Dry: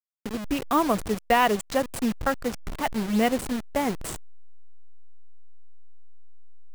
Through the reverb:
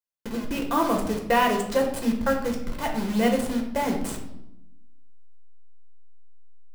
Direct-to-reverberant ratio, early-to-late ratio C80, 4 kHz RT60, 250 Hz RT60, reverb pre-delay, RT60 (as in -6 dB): 1.5 dB, 10.0 dB, 0.60 s, 1.3 s, 6 ms, 0.85 s